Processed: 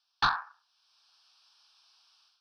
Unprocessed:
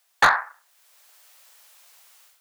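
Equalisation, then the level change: ladder low-pass 5800 Hz, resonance 70%; low shelf 240 Hz +8.5 dB; fixed phaser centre 2000 Hz, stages 6; +3.0 dB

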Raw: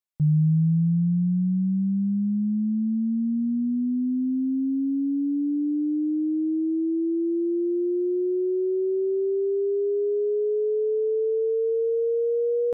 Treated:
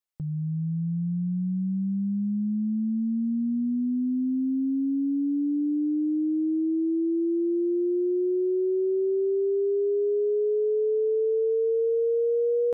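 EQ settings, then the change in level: bell 140 Hz -14 dB 0.49 oct; 0.0 dB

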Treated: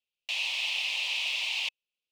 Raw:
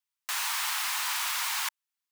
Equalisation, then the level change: EQ curve 360 Hz 0 dB, 520 Hz +8 dB, 1500 Hz -28 dB, 2600 Hz +10 dB, 14000 Hz -27 dB; 0.0 dB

